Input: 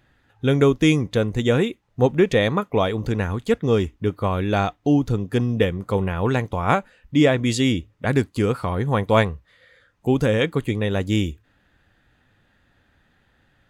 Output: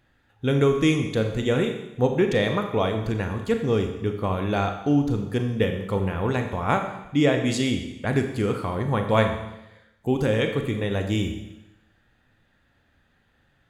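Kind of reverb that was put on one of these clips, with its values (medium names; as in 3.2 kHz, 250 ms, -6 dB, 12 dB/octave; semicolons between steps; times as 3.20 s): Schroeder reverb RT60 0.94 s, combs from 28 ms, DRR 5 dB; trim -4 dB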